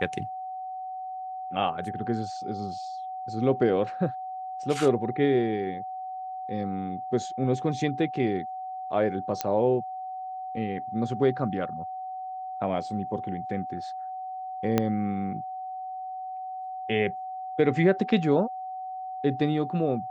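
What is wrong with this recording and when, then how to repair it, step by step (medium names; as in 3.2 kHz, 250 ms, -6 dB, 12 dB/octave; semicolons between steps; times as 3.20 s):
whine 750 Hz -33 dBFS
9.41 s: pop -10 dBFS
14.78 s: pop -9 dBFS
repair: de-click; band-stop 750 Hz, Q 30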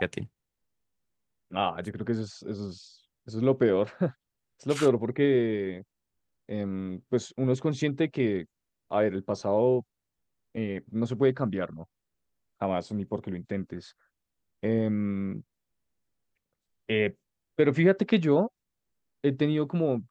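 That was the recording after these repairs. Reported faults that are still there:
14.78 s: pop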